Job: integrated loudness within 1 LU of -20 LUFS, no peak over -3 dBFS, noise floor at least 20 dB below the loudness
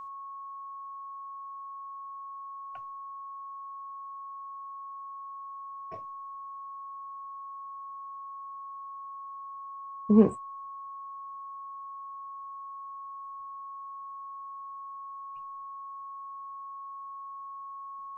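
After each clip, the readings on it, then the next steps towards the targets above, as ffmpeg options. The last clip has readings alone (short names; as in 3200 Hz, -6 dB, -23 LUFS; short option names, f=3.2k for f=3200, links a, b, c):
steady tone 1100 Hz; tone level -39 dBFS; loudness -37.0 LUFS; peak -8.5 dBFS; loudness target -20.0 LUFS
-> -af "bandreject=f=1.1k:w=30"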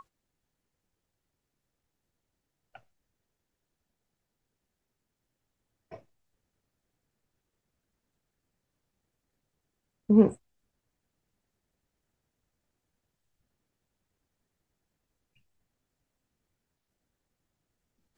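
steady tone none; loudness -23.5 LUFS; peak -9.0 dBFS; loudness target -20.0 LUFS
-> -af "volume=3.5dB"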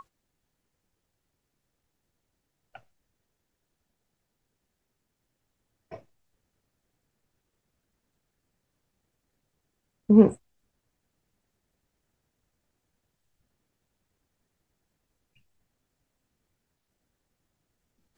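loudness -20.0 LUFS; peak -5.5 dBFS; noise floor -81 dBFS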